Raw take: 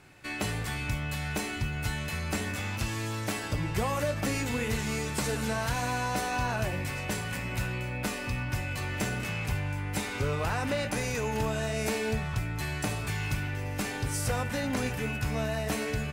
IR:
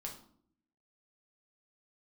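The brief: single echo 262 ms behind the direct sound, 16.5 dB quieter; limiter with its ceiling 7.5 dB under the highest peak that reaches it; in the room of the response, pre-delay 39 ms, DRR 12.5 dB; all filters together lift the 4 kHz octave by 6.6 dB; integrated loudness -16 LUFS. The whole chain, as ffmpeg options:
-filter_complex "[0:a]equalizer=f=4000:t=o:g=8.5,alimiter=limit=0.0841:level=0:latency=1,aecho=1:1:262:0.15,asplit=2[s0][s1];[1:a]atrim=start_sample=2205,adelay=39[s2];[s1][s2]afir=irnorm=-1:irlink=0,volume=0.299[s3];[s0][s3]amix=inputs=2:normalize=0,volume=5.62"

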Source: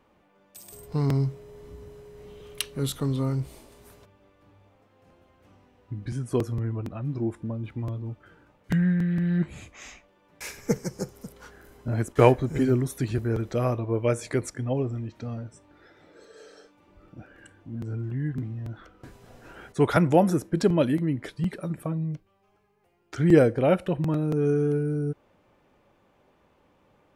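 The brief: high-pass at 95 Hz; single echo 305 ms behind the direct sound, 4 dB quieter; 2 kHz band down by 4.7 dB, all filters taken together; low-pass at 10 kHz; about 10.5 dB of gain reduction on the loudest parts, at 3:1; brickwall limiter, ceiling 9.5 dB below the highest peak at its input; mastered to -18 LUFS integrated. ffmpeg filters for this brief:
-af "highpass=95,lowpass=10000,equalizer=f=2000:t=o:g=-6.5,acompressor=threshold=0.0501:ratio=3,alimiter=limit=0.0891:level=0:latency=1,aecho=1:1:305:0.631,volume=4.73"

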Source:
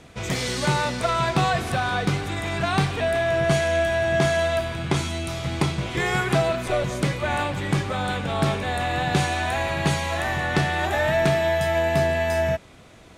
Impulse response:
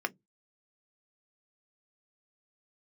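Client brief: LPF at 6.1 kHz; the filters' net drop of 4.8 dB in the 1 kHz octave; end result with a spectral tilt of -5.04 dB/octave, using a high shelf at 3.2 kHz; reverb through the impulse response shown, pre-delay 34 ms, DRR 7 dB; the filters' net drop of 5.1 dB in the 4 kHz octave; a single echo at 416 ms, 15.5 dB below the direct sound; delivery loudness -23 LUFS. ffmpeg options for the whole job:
-filter_complex "[0:a]lowpass=6100,equalizer=f=1000:t=o:g=-7.5,highshelf=f=3200:g=4.5,equalizer=f=4000:t=o:g=-8.5,aecho=1:1:416:0.168,asplit=2[s0][s1];[1:a]atrim=start_sample=2205,adelay=34[s2];[s1][s2]afir=irnorm=-1:irlink=0,volume=0.224[s3];[s0][s3]amix=inputs=2:normalize=0,volume=1.26"

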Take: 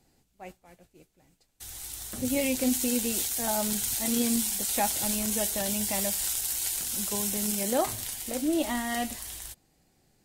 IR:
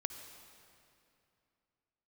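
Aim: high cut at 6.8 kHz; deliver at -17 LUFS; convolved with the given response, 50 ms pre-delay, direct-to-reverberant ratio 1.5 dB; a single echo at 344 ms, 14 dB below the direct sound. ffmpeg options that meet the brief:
-filter_complex "[0:a]lowpass=6800,aecho=1:1:344:0.2,asplit=2[s0][s1];[1:a]atrim=start_sample=2205,adelay=50[s2];[s1][s2]afir=irnorm=-1:irlink=0,volume=0.891[s3];[s0][s3]amix=inputs=2:normalize=0,volume=3.55"

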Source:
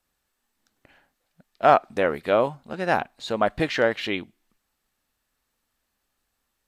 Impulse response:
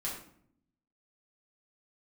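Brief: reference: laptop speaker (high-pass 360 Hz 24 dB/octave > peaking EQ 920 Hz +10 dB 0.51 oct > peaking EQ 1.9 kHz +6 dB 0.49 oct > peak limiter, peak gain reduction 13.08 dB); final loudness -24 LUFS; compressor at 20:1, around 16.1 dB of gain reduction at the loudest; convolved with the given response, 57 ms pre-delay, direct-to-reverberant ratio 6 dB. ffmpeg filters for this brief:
-filter_complex "[0:a]acompressor=threshold=0.0501:ratio=20,asplit=2[s0][s1];[1:a]atrim=start_sample=2205,adelay=57[s2];[s1][s2]afir=irnorm=-1:irlink=0,volume=0.376[s3];[s0][s3]amix=inputs=2:normalize=0,highpass=f=360:w=0.5412,highpass=f=360:w=1.3066,equalizer=f=920:t=o:w=0.51:g=10,equalizer=f=1900:t=o:w=0.49:g=6,volume=3.76,alimiter=limit=0.211:level=0:latency=1"

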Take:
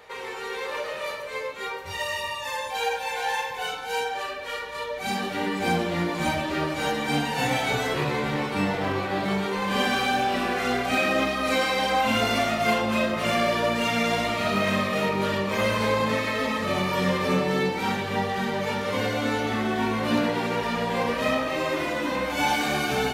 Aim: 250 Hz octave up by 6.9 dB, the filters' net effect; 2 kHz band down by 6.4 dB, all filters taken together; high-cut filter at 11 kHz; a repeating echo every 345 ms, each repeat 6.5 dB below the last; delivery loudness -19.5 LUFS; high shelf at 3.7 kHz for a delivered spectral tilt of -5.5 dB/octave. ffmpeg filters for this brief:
-af "lowpass=11000,equalizer=f=250:t=o:g=8.5,equalizer=f=2000:t=o:g=-6,highshelf=f=3700:g=-8,aecho=1:1:345|690|1035|1380|1725|2070:0.473|0.222|0.105|0.0491|0.0231|0.0109,volume=1.41"

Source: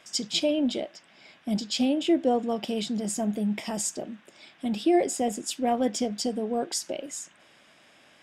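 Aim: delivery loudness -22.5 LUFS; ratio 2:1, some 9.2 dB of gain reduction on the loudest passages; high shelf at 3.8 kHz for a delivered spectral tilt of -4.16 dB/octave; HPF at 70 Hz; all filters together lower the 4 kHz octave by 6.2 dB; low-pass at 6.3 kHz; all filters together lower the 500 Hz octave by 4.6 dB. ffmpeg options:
-af "highpass=70,lowpass=6300,equalizer=f=500:t=o:g=-6,highshelf=f=3800:g=-3.5,equalizer=f=4000:t=o:g=-5,acompressor=threshold=0.0126:ratio=2,volume=5.96"

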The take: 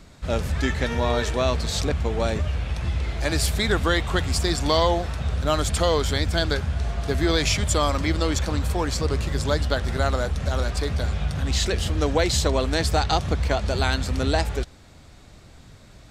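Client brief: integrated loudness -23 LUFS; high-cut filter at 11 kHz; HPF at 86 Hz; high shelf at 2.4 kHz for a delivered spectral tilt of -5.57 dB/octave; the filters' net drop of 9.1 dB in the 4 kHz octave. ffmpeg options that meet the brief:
-af "highpass=86,lowpass=11000,highshelf=f=2400:g=-3.5,equalizer=f=4000:t=o:g=-8,volume=1.5"

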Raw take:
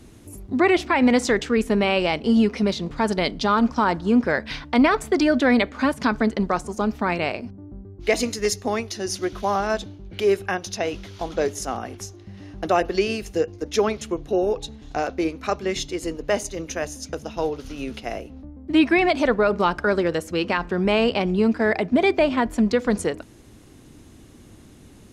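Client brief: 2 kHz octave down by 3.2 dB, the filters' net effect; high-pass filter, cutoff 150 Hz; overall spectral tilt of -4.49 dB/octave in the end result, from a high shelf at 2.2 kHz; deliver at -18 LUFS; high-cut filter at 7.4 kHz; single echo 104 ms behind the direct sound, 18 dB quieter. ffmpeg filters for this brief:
-af "highpass=150,lowpass=7400,equalizer=f=2000:t=o:g=-6,highshelf=f=2200:g=3.5,aecho=1:1:104:0.126,volume=1.78"

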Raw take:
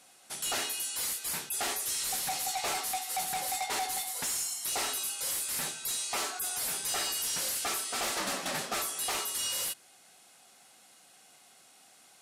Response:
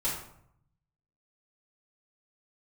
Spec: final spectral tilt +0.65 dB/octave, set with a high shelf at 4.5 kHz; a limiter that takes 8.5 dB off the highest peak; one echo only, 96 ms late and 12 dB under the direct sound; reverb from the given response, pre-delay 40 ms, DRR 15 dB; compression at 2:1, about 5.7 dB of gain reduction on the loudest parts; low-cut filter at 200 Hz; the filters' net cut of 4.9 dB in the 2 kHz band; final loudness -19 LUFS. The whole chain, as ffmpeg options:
-filter_complex "[0:a]highpass=200,equalizer=f=2000:t=o:g=-7,highshelf=f=4500:g=3.5,acompressor=threshold=0.0112:ratio=2,alimiter=level_in=3.16:limit=0.0631:level=0:latency=1,volume=0.316,aecho=1:1:96:0.251,asplit=2[s0][s1];[1:a]atrim=start_sample=2205,adelay=40[s2];[s1][s2]afir=irnorm=-1:irlink=0,volume=0.0794[s3];[s0][s3]amix=inputs=2:normalize=0,volume=9.44"

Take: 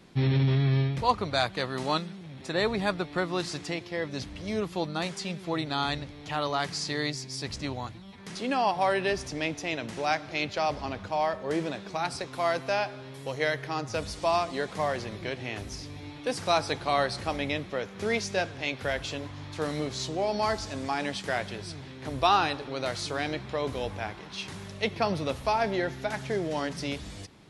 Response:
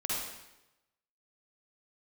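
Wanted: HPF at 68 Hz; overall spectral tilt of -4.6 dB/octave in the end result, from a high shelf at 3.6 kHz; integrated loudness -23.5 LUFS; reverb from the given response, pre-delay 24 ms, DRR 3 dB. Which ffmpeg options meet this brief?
-filter_complex "[0:a]highpass=68,highshelf=f=3600:g=-8.5,asplit=2[s0][s1];[1:a]atrim=start_sample=2205,adelay=24[s2];[s1][s2]afir=irnorm=-1:irlink=0,volume=0.376[s3];[s0][s3]amix=inputs=2:normalize=0,volume=1.88"

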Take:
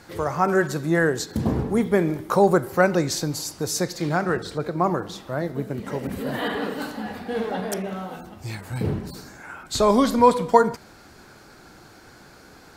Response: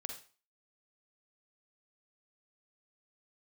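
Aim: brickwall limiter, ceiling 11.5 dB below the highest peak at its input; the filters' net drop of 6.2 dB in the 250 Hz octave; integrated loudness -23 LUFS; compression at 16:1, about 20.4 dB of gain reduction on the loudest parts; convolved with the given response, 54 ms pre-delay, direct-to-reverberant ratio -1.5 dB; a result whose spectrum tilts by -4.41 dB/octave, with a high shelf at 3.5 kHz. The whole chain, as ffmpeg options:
-filter_complex "[0:a]equalizer=f=250:t=o:g=-9,highshelf=f=3500:g=5.5,acompressor=threshold=0.0282:ratio=16,alimiter=level_in=1.78:limit=0.0631:level=0:latency=1,volume=0.562,asplit=2[s0][s1];[1:a]atrim=start_sample=2205,adelay=54[s2];[s1][s2]afir=irnorm=-1:irlink=0,volume=1.5[s3];[s0][s3]amix=inputs=2:normalize=0,volume=4.22"

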